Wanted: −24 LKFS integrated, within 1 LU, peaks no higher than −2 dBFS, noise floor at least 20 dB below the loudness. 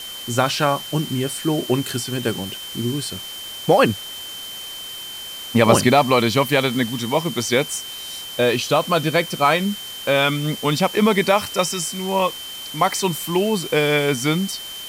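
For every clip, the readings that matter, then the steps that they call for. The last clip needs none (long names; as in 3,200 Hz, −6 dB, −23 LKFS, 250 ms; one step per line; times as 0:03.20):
interfering tone 3,100 Hz; level of the tone −32 dBFS; background noise floor −33 dBFS; target noise floor −41 dBFS; integrated loudness −20.5 LKFS; sample peak −1.5 dBFS; target loudness −24.0 LKFS
→ notch filter 3,100 Hz, Q 30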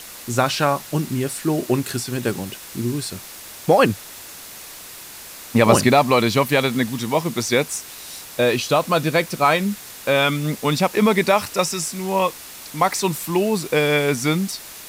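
interfering tone none found; background noise floor −38 dBFS; target noise floor −40 dBFS
→ broadband denoise 6 dB, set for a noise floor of −38 dBFS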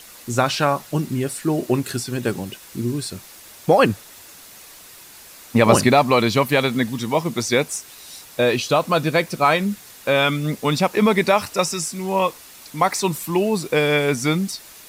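background noise floor −44 dBFS; integrated loudness −20.0 LKFS; sample peak −2.0 dBFS; target loudness −24.0 LKFS
→ level −4 dB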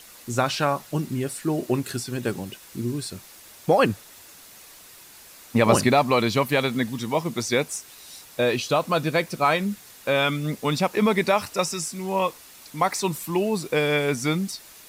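integrated loudness −24.0 LKFS; sample peak −6.0 dBFS; background noise floor −48 dBFS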